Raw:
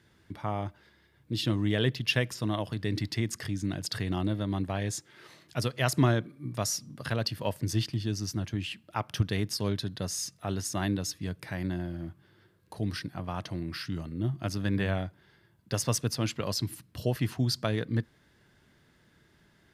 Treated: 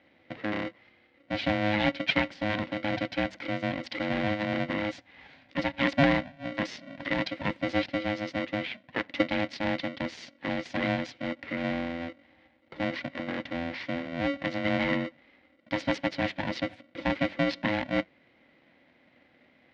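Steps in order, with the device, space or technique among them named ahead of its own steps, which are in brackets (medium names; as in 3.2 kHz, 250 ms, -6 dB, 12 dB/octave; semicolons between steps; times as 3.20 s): ring modulator pedal into a guitar cabinet (polarity switched at an audio rate 420 Hz; cabinet simulation 76–3700 Hz, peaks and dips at 150 Hz +3 dB, 250 Hz +6 dB, 1.2 kHz -9 dB, 2 kHz +8 dB)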